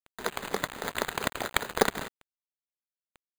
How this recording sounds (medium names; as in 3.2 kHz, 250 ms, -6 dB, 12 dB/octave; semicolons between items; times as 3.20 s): aliases and images of a low sample rate 5.5 kHz, jitter 0%; tremolo triangle 5.1 Hz, depth 65%; a quantiser's noise floor 8-bit, dither none